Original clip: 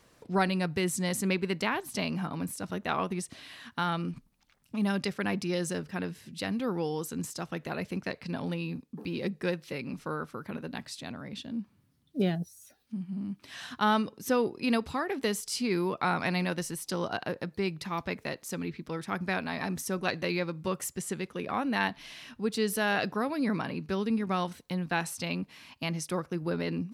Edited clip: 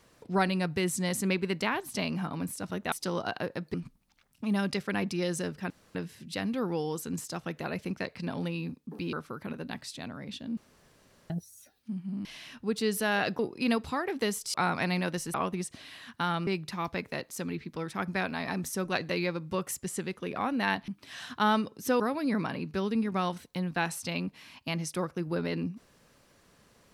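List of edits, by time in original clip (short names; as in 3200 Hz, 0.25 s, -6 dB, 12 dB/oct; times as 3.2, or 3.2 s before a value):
2.92–4.05 swap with 16.78–17.6
6.01 insert room tone 0.25 s
9.19–10.17 cut
11.61–12.34 room tone
13.29–14.41 swap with 22.01–23.15
15.56–15.98 cut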